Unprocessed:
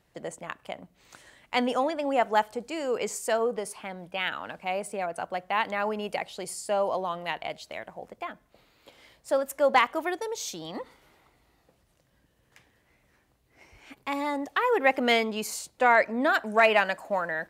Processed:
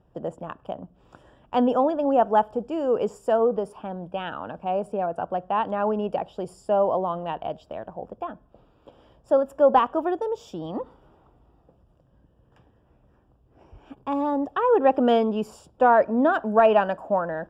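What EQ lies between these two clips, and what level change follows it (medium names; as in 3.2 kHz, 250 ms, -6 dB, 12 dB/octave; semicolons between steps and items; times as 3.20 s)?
boxcar filter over 21 samples; bass shelf 130 Hz +4.5 dB; +6.5 dB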